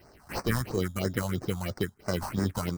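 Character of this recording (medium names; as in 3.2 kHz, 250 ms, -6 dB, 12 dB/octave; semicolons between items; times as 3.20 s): aliases and images of a low sample rate 3.5 kHz, jitter 0%; phasing stages 4, 3 Hz, lowest notch 360–3100 Hz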